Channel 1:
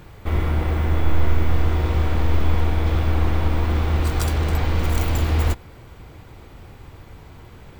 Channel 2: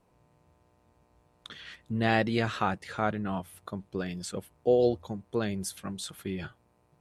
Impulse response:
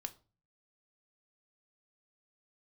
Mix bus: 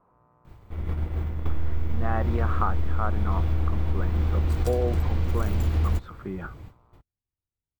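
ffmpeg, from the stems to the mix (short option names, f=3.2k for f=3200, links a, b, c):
-filter_complex "[0:a]lowshelf=f=330:g=9,adelay=450,volume=-8dB[a];[1:a]lowpass=f=1.2k:t=q:w=4,volume=0.5dB,asplit=2[b][c];[c]apad=whole_len=363665[d];[a][d]sidechaingate=range=-51dB:threshold=-60dB:ratio=16:detection=peak[e];[e][b]amix=inputs=2:normalize=0,acompressor=threshold=-19dB:ratio=6"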